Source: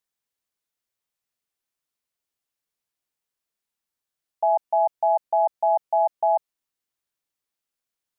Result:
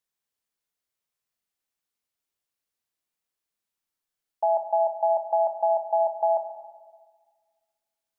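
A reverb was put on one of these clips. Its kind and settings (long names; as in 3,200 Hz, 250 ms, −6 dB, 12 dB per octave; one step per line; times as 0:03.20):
four-comb reverb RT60 1.6 s, combs from 29 ms, DRR 5.5 dB
level −2 dB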